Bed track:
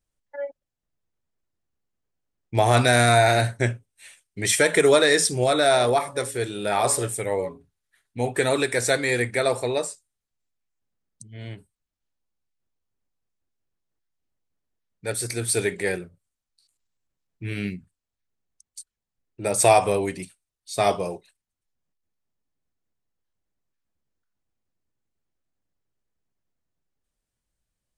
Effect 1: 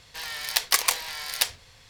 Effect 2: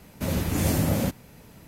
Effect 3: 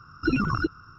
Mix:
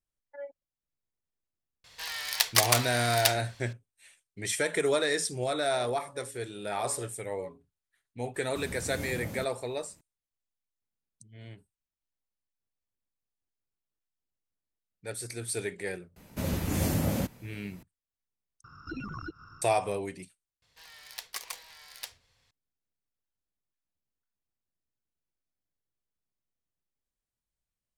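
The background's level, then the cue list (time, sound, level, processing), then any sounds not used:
bed track −10 dB
0:01.84: mix in 1 −1.5 dB + low-shelf EQ 400 Hz −7.5 dB
0:08.34: mix in 2 −15 dB
0:16.16: mix in 2 −4.5 dB
0:18.64: overwrite with 3 −3 dB + downward compressor 2 to 1, threshold −42 dBFS
0:20.62: overwrite with 1 −17 dB

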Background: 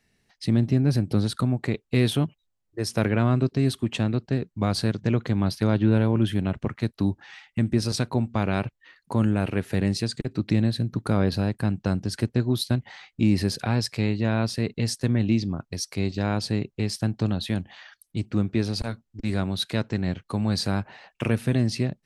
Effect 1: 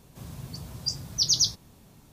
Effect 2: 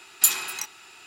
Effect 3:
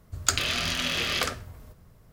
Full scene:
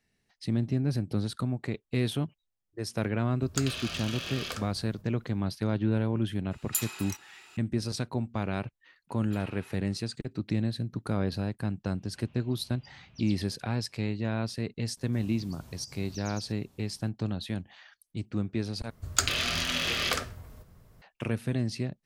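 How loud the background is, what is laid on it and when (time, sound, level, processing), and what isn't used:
background −7 dB
0:03.29: mix in 3 −9.5 dB + notch filter 2,000 Hz, Q 7.5
0:06.51: mix in 2 −11.5 dB + camcorder AGC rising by 7.6 dB per second
0:09.09: mix in 2 −13 dB + high-frequency loss of the air 390 metres
0:11.97: mix in 1 −5.5 dB + transistor ladder low-pass 3,000 Hz, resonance 70%
0:14.97: mix in 1 −8 dB + downward compressor 10 to 1, threshold −34 dBFS
0:18.90: overwrite with 3 −1.5 dB

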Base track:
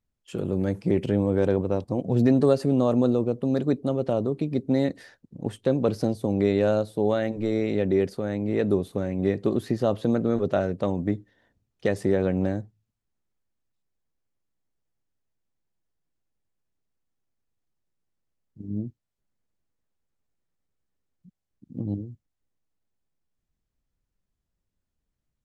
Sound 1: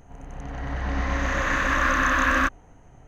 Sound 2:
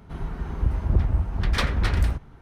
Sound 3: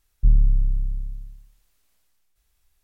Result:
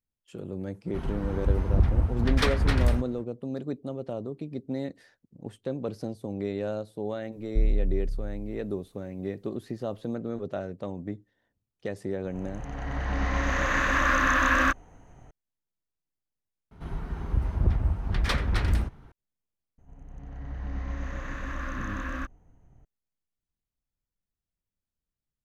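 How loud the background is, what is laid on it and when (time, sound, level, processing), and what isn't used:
base track −9.5 dB
0:00.84: mix in 2 −1 dB, fades 0.05 s
0:07.32: mix in 3 −7.5 dB
0:12.24: mix in 1 −1.5 dB
0:16.71: mix in 2 −3 dB
0:19.78: mix in 1 −17.5 dB + low-shelf EQ 360 Hz +12 dB

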